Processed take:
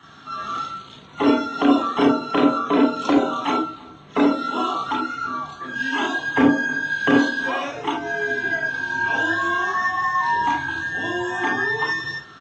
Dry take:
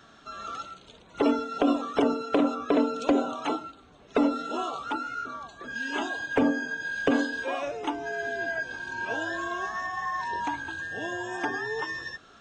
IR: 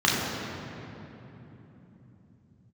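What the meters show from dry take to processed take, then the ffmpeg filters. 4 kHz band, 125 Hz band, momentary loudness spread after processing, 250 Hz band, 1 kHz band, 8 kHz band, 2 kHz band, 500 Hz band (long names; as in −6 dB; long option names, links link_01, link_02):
+9.0 dB, +10.5 dB, 10 LU, +7.5 dB, +9.0 dB, +5.0 dB, +9.5 dB, +4.5 dB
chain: -filter_complex "[0:a]asplit=2[link_01][link_02];[link_02]adelay=320.7,volume=-22dB,highshelf=frequency=4000:gain=-7.22[link_03];[link_01][link_03]amix=inputs=2:normalize=0[link_04];[1:a]atrim=start_sample=2205,atrim=end_sample=3969[link_05];[link_04][link_05]afir=irnorm=-1:irlink=0,volume=-7dB"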